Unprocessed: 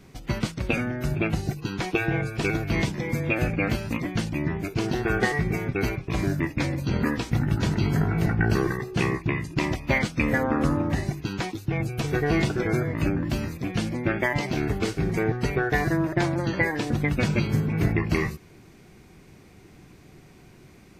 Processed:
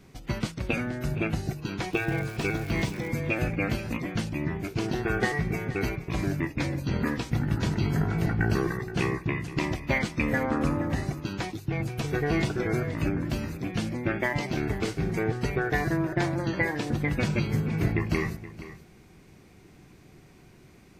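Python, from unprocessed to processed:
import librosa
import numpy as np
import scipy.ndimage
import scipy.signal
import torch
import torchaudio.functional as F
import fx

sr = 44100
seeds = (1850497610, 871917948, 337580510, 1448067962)

y = fx.dmg_crackle(x, sr, seeds[0], per_s=430.0, level_db=-33.0, at=(1.92, 3.07), fade=0.02)
y = y + 10.0 ** (-15.0 / 20.0) * np.pad(y, (int(473 * sr / 1000.0), 0))[:len(y)]
y = y * 10.0 ** (-3.0 / 20.0)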